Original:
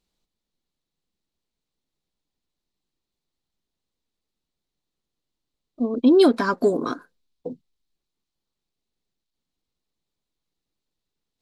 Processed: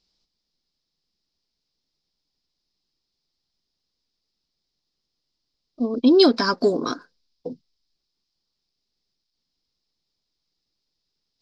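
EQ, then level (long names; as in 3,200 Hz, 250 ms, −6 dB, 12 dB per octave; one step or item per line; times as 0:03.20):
low-pass with resonance 5,100 Hz, resonance Q 7.6
0.0 dB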